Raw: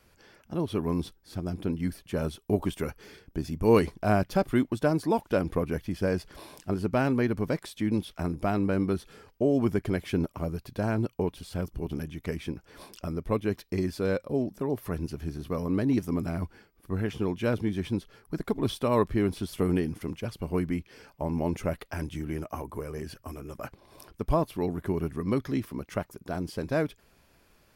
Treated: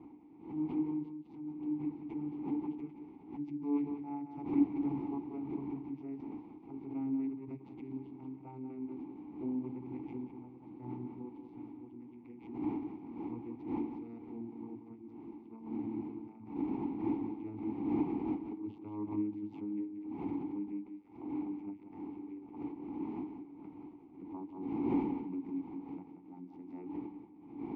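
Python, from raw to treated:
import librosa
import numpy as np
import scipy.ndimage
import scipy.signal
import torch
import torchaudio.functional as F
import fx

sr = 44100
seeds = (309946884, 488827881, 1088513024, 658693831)

p1 = fx.vocoder_glide(x, sr, note=51, semitones=-10)
p2 = fx.dmg_wind(p1, sr, seeds[0], corner_hz=360.0, level_db=-31.0)
p3 = fx.vowel_filter(p2, sr, vowel='u')
p4 = p3 + fx.echo_single(p3, sr, ms=182, db=-8.5, dry=0)
p5 = fx.pre_swell(p4, sr, db_per_s=110.0)
y = p5 * 10.0 ** (-2.5 / 20.0)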